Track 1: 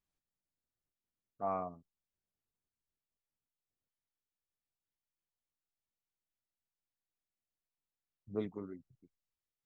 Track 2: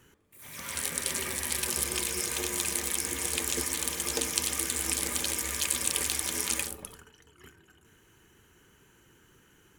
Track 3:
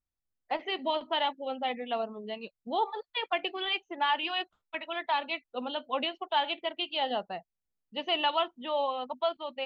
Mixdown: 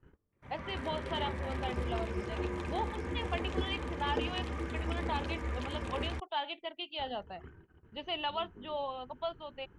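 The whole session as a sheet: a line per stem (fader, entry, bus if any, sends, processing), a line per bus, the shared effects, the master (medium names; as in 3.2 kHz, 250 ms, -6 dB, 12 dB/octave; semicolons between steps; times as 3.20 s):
-11.0 dB, 0.00 s, no send, peak limiter -34 dBFS, peak gain reduction 10.5 dB
+0.5 dB, 0.00 s, muted 6.20–6.99 s, no send, low-pass 1.3 kHz 12 dB/octave
-7.5 dB, 0.00 s, no send, none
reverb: none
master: bass shelf 93 Hz +12 dB; gate -57 dBFS, range -16 dB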